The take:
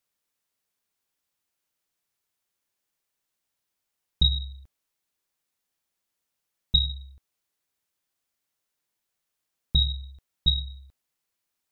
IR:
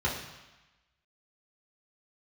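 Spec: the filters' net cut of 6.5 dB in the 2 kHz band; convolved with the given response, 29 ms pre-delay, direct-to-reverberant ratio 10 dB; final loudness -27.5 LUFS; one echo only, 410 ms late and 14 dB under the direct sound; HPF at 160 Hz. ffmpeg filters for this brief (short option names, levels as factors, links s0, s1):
-filter_complex "[0:a]highpass=160,equalizer=f=2000:t=o:g=-9,aecho=1:1:410:0.2,asplit=2[s0][s1];[1:a]atrim=start_sample=2205,adelay=29[s2];[s1][s2]afir=irnorm=-1:irlink=0,volume=0.106[s3];[s0][s3]amix=inputs=2:normalize=0,volume=1.26"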